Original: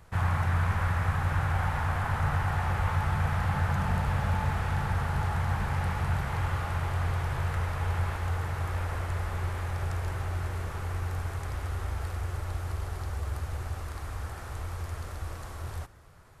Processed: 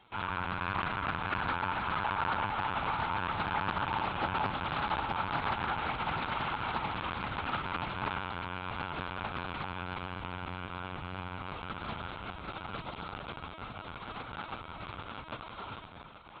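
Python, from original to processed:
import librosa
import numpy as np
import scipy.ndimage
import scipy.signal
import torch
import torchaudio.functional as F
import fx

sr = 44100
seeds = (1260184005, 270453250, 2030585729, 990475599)

y = fx.cvsd(x, sr, bps=64000)
y = fx.high_shelf(y, sr, hz=2600.0, db=6.5)
y = fx.echo_diffused(y, sr, ms=772, feedback_pct=52, wet_db=-10.5)
y = fx.room_shoebox(y, sr, seeds[0], volume_m3=2100.0, walls='furnished', distance_m=4.4)
y = 10.0 ** (-11.5 / 20.0) * np.tanh(y / 10.0 ** (-11.5 / 20.0))
y = fx.peak_eq(y, sr, hz=1800.0, db=-15.0, octaves=0.25)
y = fx.lpc_vocoder(y, sr, seeds[1], excitation='pitch_kept', order=16)
y = fx.highpass(y, sr, hz=870.0, slope=6)
y = fx.doppler_dist(y, sr, depth_ms=0.39)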